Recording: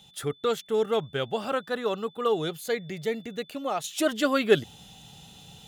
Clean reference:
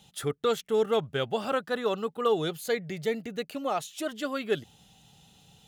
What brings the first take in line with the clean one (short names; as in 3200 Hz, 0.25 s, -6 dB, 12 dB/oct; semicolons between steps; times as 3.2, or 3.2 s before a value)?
notch 3500 Hz, Q 30; gain 0 dB, from 3.84 s -8 dB